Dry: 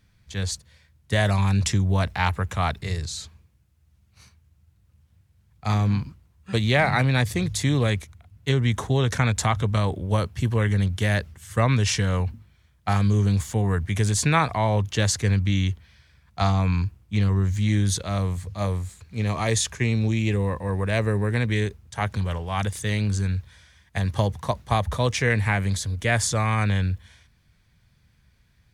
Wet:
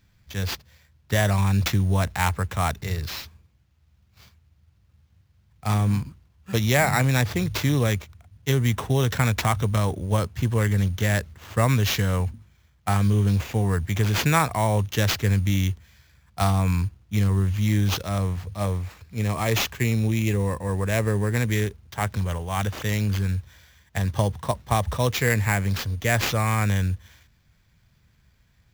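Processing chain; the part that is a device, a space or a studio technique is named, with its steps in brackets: early companding sampler (sample-rate reducer 9.4 kHz, jitter 0%; companded quantiser 8-bit)

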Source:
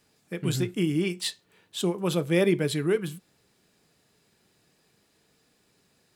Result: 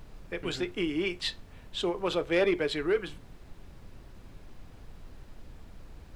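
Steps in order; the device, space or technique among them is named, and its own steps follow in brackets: aircraft cabin announcement (band-pass 420–3800 Hz; saturation -19.5 dBFS, distortion -19 dB; brown noise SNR 12 dB); trim +2.5 dB

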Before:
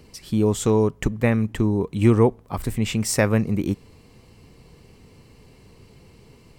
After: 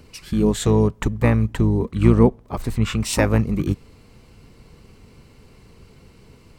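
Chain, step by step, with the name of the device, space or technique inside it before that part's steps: 1.91–3.13 s: treble shelf 6.1 kHz -5 dB; octave pedal (harmony voices -12 st -3 dB)

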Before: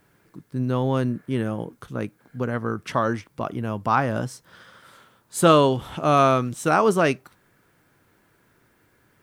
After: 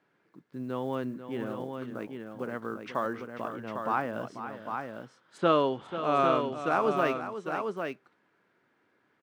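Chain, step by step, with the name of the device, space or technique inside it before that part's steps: early digital voice recorder (band-pass 220–3600 Hz; block-companded coder 7-bit); 3.56–4.01 s: treble shelf 4.7 kHz -5.5 dB; 5.37–6.95 s: low-pass 4.3 kHz -> 9.6 kHz 12 dB/octave; multi-tap echo 491/802 ms -11/-6 dB; trim -8 dB

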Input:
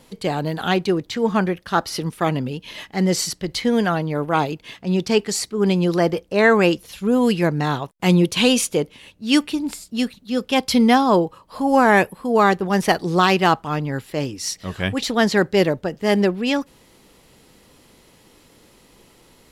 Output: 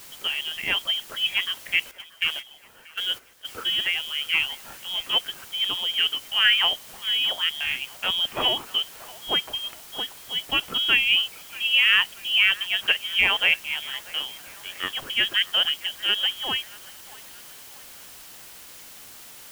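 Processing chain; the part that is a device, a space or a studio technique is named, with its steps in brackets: scrambled radio voice (band-pass 370–2800 Hz; frequency inversion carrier 3.5 kHz; white noise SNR 18 dB); 1.91–3.47 s: gate -27 dBFS, range -13 dB; feedback echo behind a band-pass 634 ms, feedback 47%, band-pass 990 Hz, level -17 dB; trim -3 dB

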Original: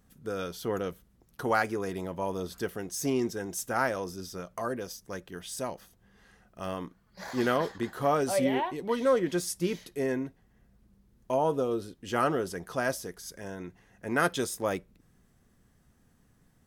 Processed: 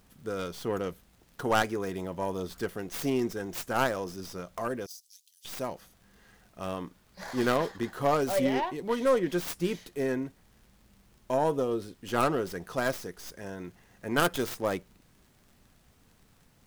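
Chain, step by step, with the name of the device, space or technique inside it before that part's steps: record under a worn stylus (tracing distortion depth 0.3 ms; crackle; pink noise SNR 34 dB); 4.86–5.45 s: inverse Chebyshev high-pass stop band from 1.3 kHz, stop band 60 dB

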